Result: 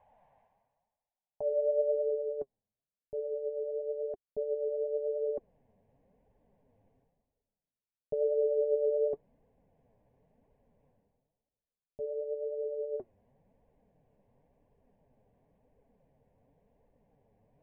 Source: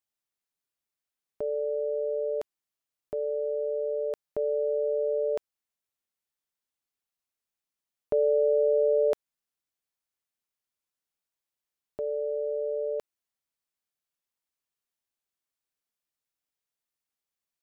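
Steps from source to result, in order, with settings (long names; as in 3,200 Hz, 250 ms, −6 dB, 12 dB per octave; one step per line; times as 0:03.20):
dynamic equaliser 390 Hz, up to +4 dB, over −36 dBFS, Q 1.6
phaser with its sweep stopped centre 1,300 Hz, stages 6
low-pass filter sweep 810 Hz → 380 Hz, 0:01.47–0:02.27
reversed playback
upward compression, threshold −33 dBFS
reversed playback
flanger 0.95 Hz, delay 1.8 ms, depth 8.5 ms, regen +41%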